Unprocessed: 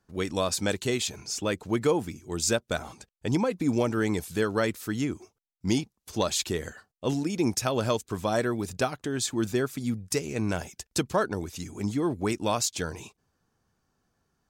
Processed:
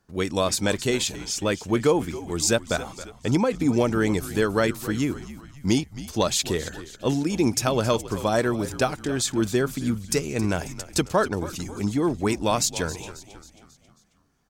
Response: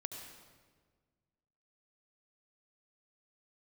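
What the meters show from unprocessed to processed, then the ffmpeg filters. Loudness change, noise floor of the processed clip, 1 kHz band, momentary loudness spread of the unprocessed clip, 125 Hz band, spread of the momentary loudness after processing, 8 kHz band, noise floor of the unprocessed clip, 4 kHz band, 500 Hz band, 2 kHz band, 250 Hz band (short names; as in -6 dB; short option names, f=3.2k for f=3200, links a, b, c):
+4.0 dB, -58 dBFS, +4.0 dB, 8 LU, +4.5 dB, 8 LU, +4.0 dB, -79 dBFS, +4.0 dB, +4.0 dB, +4.0 dB, +4.0 dB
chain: -filter_complex "[0:a]asplit=6[a][b][c][d][e][f];[b]adelay=270,afreqshift=-74,volume=-15dB[g];[c]adelay=540,afreqshift=-148,volume=-21dB[h];[d]adelay=810,afreqshift=-222,volume=-27dB[i];[e]adelay=1080,afreqshift=-296,volume=-33.1dB[j];[f]adelay=1350,afreqshift=-370,volume=-39.1dB[k];[a][g][h][i][j][k]amix=inputs=6:normalize=0,volume=4dB"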